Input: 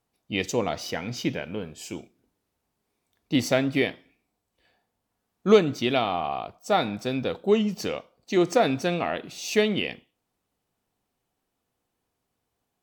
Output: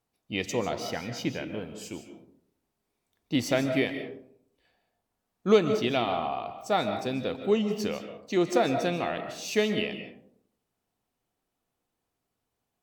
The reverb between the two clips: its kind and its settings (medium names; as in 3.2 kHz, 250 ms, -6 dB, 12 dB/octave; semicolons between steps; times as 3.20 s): algorithmic reverb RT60 0.65 s, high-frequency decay 0.35×, pre-delay 105 ms, DRR 8 dB; trim -3.5 dB